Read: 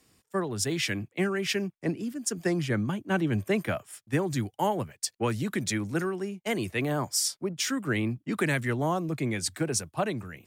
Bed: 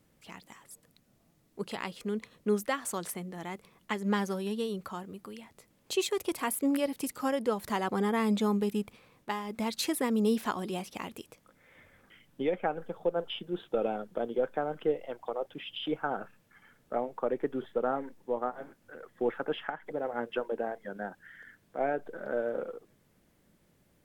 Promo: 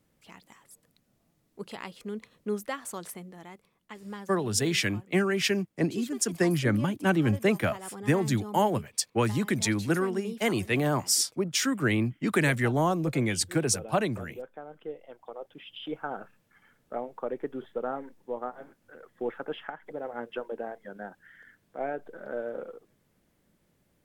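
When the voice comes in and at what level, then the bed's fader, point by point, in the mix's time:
3.95 s, +2.5 dB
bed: 0:03.15 −3 dB
0:03.83 −11.5 dB
0:14.62 −11.5 dB
0:16.02 −2.5 dB

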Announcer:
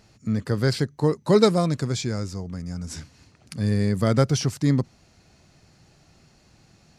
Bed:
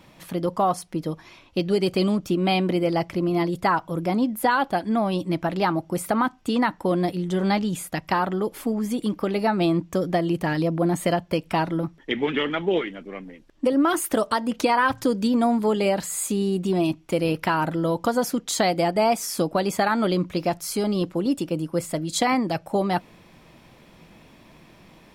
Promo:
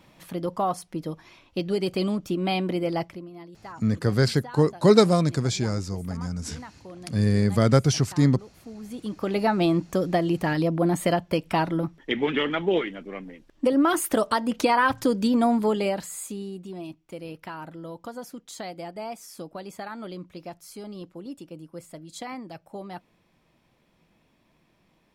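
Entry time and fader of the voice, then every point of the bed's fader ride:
3.55 s, +1.0 dB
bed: 0:03.03 −4 dB
0:03.30 −20.5 dB
0:08.54 −20.5 dB
0:09.35 −0.5 dB
0:15.62 −0.5 dB
0:16.71 −15 dB

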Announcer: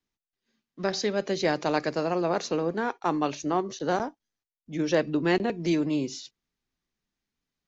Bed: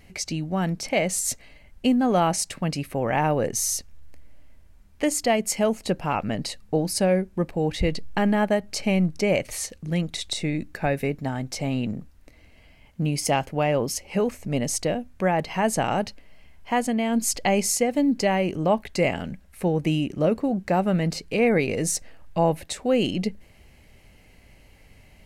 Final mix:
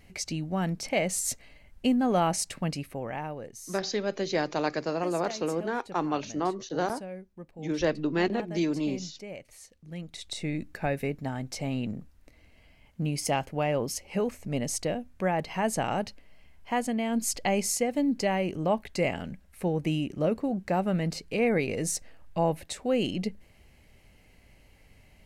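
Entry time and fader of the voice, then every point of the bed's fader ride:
2.90 s, −2.5 dB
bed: 0:02.67 −4 dB
0:03.60 −19.5 dB
0:09.66 −19.5 dB
0:10.51 −5 dB

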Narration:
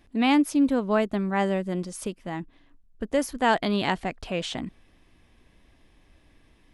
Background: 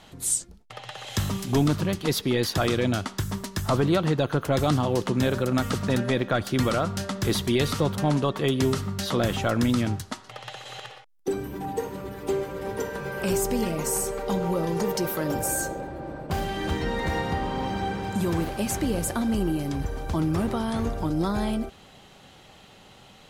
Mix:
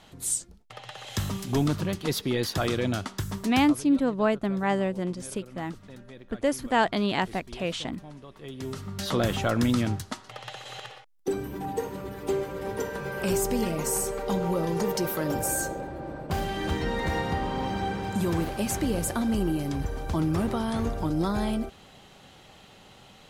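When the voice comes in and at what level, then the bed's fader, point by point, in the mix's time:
3.30 s, −1.0 dB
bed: 0:03.57 −3 dB
0:03.80 −22 dB
0:08.28 −22 dB
0:09.10 −1 dB

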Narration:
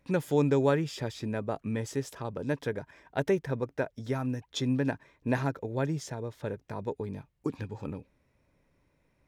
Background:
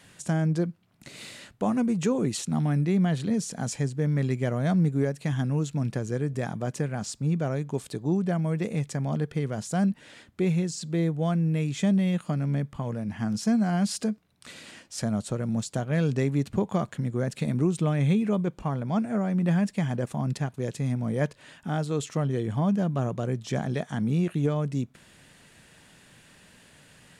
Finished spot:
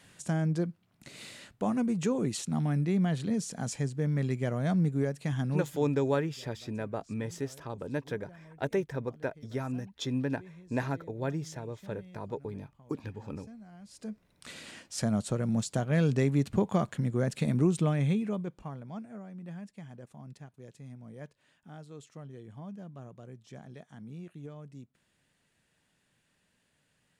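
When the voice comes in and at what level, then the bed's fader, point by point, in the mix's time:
5.45 s, −3.0 dB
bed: 0:05.59 −4 dB
0:05.96 −26 dB
0:13.85 −26 dB
0:14.26 −1 dB
0:17.77 −1 dB
0:19.31 −19 dB

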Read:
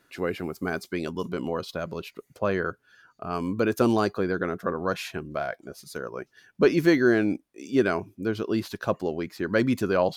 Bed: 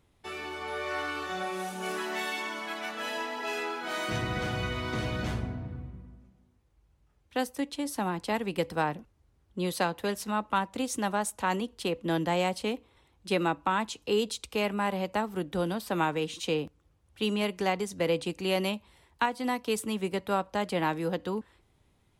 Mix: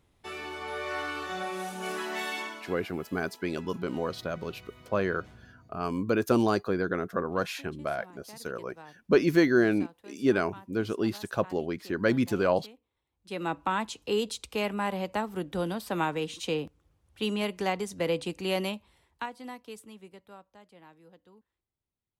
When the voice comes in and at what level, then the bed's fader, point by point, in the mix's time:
2.50 s, −2.0 dB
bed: 0:02.42 −0.5 dB
0:02.95 −20.5 dB
0:13.05 −20.5 dB
0:13.54 −1 dB
0:18.59 −1 dB
0:20.70 −25.5 dB

